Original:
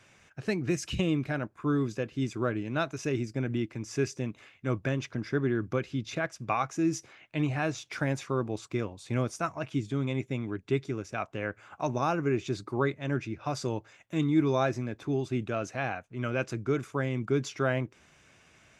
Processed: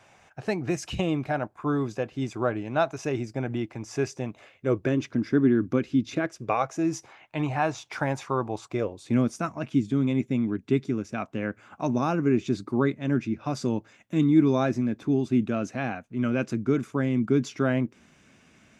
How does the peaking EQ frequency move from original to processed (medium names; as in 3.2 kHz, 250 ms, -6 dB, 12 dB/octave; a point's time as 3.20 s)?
peaking EQ +12 dB 0.85 oct
4.30 s 770 Hz
5.09 s 260 Hz
6.10 s 260 Hz
6.95 s 870 Hz
8.65 s 870 Hz
9.16 s 230 Hz